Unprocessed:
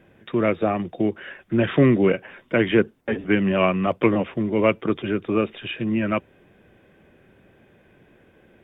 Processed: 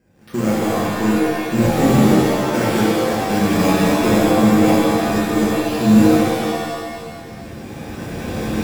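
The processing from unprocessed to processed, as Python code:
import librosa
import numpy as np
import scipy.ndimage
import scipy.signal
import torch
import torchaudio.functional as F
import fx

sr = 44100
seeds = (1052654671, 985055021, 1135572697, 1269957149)

p1 = fx.recorder_agc(x, sr, target_db=-12.0, rise_db_per_s=14.0, max_gain_db=30)
p2 = scipy.signal.sosfilt(scipy.signal.butter(2, 52.0, 'highpass', fs=sr, output='sos'), p1)
p3 = fx.low_shelf(p2, sr, hz=230.0, db=11.0)
p4 = fx.quant_companded(p3, sr, bits=2)
p5 = p3 + F.gain(torch.from_numpy(p4), -11.5).numpy()
p6 = np.repeat(scipy.signal.resample_poly(p5, 1, 6), 6)[:len(p5)]
p7 = fx.buffer_crackle(p6, sr, first_s=0.54, period_s=0.27, block=1024, kind='repeat')
p8 = fx.rev_shimmer(p7, sr, seeds[0], rt60_s=1.7, semitones=7, shimmer_db=-2, drr_db=-6.5)
y = F.gain(torch.from_numpy(p8), -14.0).numpy()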